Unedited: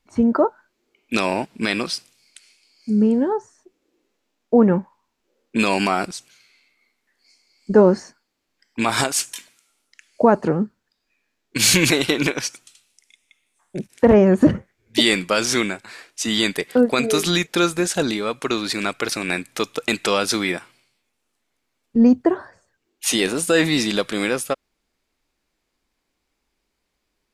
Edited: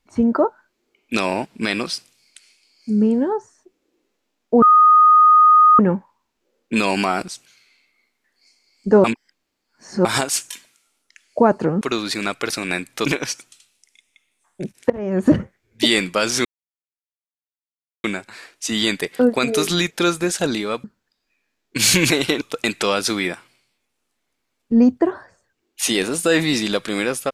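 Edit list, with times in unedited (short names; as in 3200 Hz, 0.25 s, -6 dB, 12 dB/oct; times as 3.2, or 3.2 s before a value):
4.62 add tone 1240 Hz -7.5 dBFS 1.17 s
7.87–8.88 reverse
10.64–12.21 swap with 18.4–19.65
14.05–14.41 fade in quadratic, from -21 dB
15.6 insert silence 1.59 s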